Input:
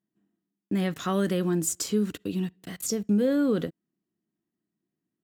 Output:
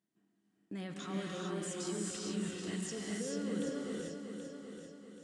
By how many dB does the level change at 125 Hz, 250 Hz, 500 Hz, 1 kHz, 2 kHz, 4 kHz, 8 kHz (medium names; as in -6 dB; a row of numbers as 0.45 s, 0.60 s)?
-12.0 dB, -12.0 dB, -11.5 dB, -10.5 dB, -6.5 dB, -6.5 dB, -9.5 dB